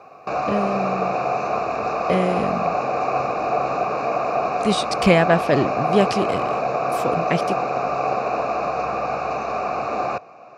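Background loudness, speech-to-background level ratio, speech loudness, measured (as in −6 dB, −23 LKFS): −23.0 LKFS, 0.5 dB, −22.5 LKFS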